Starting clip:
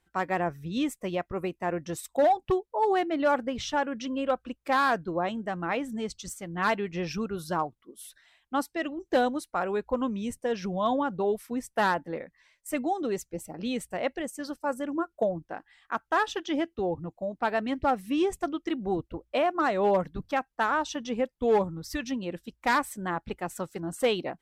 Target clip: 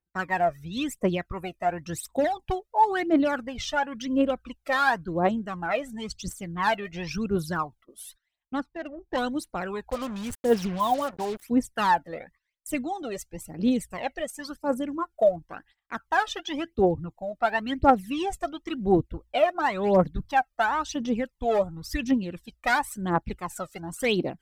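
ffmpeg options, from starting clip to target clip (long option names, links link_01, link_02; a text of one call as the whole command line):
ffmpeg -i in.wav -filter_complex "[0:a]agate=range=-23dB:threshold=-52dB:ratio=16:detection=peak,aphaser=in_gain=1:out_gain=1:delay=1.7:decay=0.73:speed=0.95:type=triangular,asettb=1/sr,asplit=3[link_01][link_02][link_03];[link_01]atrim=end=8.604[link_04];[link_02]atrim=start=8.6:end=9.18,asetpts=PTS-STARTPTS,afade=type=in:duration=0.004:curve=qsin,afade=type=out:start_time=0.576:duration=0.004:curve=qsin,adynamicsmooth=sensitivity=1:basefreq=1200[link_05];[link_03]atrim=start=9.176[link_06];[link_04][link_05]acrossfade=duration=0.004:curve1=hsin:curve2=qsin[link_07];[link_07][link_06]acrossfade=duration=0.004:curve1=qsin:curve2=hsin,asettb=1/sr,asplit=3[link_08][link_09][link_10];[link_08]atrim=end=9.904[link_11];[link_09]atrim=start=9.9:end=11.43,asetpts=PTS-STARTPTS,afade=type=in:duration=0.004:curve=qsin,afade=type=out:start_time=1.526:duration=0.004:curve=qsin,acrusher=bits=5:mix=0:aa=0.5[link_12];[link_10]atrim=start=11.426[link_13];[link_11][link_12]acrossfade=duration=0.004:curve1=hsin:curve2=qsin[link_14];[link_14][link_13]acrossfade=duration=0.004:curve1=qsin:curve2=hsin,volume=-1dB" out.wav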